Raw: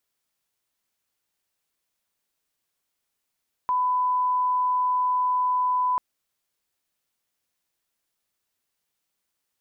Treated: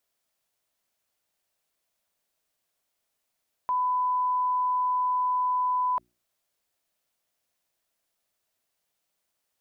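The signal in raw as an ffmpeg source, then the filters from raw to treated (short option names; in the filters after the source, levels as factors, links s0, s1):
-f lavfi -i "sine=f=1000:d=2.29:r=44100,volume=-1.94dB"
-af "equalizer=f=640:w=3.2:g=7,bandreject=f=60:t=h:w=6,bandreject=f=120:t=h:w=6,bandreject=f=180:t=h:w=6,bandreject=f=240:t=h:w=6,bandreject=f=300:t=h:w=6,bandreject=f=360:t=h:w=6,alimiter=limit=0.075:level=0:latency=1:release=23"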